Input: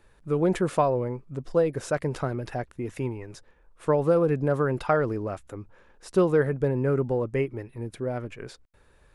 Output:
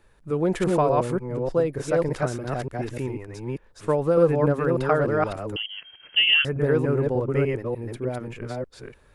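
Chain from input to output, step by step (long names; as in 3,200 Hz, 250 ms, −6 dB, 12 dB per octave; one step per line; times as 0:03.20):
delay that plays each chunk backwards 298 ms, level −1 dB
0:05.56–0:06.45: voice inversion scrambler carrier 3,200 Hz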